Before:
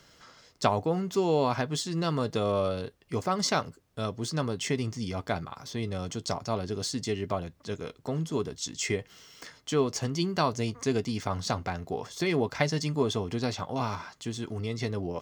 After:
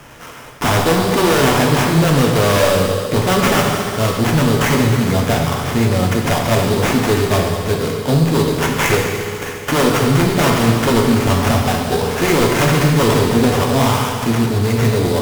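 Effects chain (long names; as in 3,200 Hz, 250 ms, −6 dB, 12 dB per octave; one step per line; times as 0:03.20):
sample-rate reduction 4,300 Hz, jitter 20%
echo machine with several playback heads 70 ms, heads all three, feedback 74%, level −20 dB
sine wavefolder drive 15 dB, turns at −9.5 dBFS
reverb whose tail is shaped and stops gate 440 ms falling, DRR 0.5 dB
level −2.5 dB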